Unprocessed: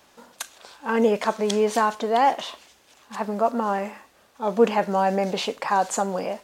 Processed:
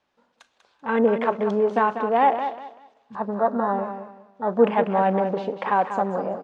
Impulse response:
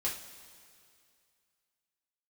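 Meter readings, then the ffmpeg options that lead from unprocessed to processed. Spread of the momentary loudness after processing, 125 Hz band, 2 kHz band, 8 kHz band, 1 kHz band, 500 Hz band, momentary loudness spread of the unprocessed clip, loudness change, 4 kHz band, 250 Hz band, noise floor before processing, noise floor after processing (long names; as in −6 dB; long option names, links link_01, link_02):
13 LU, can't be measured, −0.5 dB, below −25 dB, +1.0 dB, +1.0 dB, 15 LU, +0.5 dB, below −10 dB, +1.0 dB, −58 dBFS, −69 dBFS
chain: -filter_complex "[0:a]lowpass=3900,afwtdn=0.0251,aecho=1:1:193|386|579:0.355|0.0923|0.024,asplit=2[link_01][link_02];[1:a]atrim=start_sample=2205[link_03];[link_02][link_03]afir=irnorm=-1:irlink=0,volume=-23.5dB[link_04];[link_01][link_04]amix=inputs=2:normalize=0"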